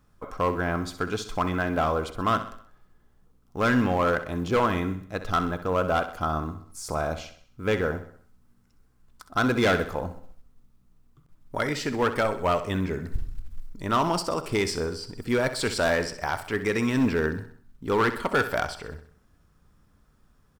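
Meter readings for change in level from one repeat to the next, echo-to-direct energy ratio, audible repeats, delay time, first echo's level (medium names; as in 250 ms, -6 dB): -6.5 dB, -11.0 dB, 4, 64 ms, -12.0 dB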